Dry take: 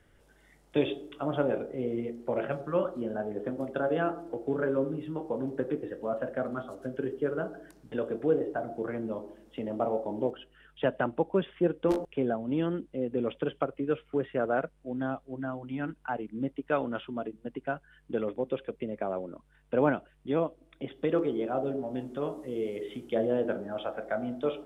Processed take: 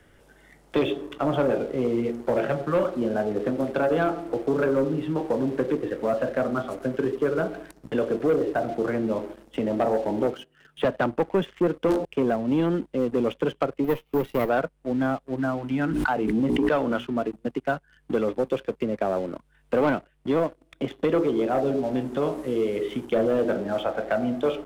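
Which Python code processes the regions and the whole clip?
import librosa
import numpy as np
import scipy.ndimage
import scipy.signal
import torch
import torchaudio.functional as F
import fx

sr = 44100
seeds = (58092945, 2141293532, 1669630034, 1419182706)

y = fx.chain(x, sr, fx.block_float(bits=7),
    fx.highpass(hz=91.0, slope=24),
    fx.low_shelf(hz=160.0, db=6.0), at=(10.34, 10.85))
y = fx.chain(y, sr, fx.lower_of_two(delay_ms=0.32),
    fx.resample_bad(factor=3, down='none', up='hold'), at=(13.84, 14.49))
y = fx.chain(y, sr, fx.hum_notches(base_hz=60, count=7),
    fx.pre_swell(db_per_s=23.0), at=(15.86, 17.07))
y = fx.leveller(y, sr, passes=2)
y = fx.band_squash(y, sr, depth_pct=40)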